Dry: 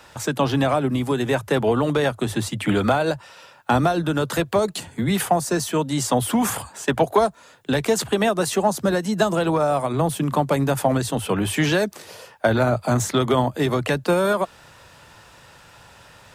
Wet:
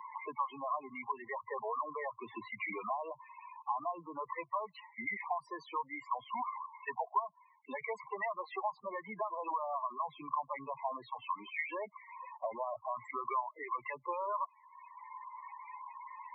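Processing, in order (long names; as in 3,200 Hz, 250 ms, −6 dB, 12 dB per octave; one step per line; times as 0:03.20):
pair of resonant band-passes 1,500 Hz, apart 0.99 octaves
spectral peaks only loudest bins 8
multiband upward and downward compressor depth 70%
level −2 dB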